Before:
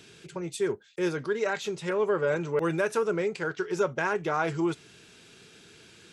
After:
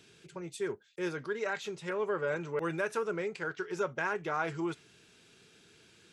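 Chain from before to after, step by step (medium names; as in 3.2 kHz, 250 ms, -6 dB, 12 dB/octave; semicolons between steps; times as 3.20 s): dynamic bell 1.7 kHz, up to +4 dB, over -42 dBFS, Q 0.7; trim -7.5 dB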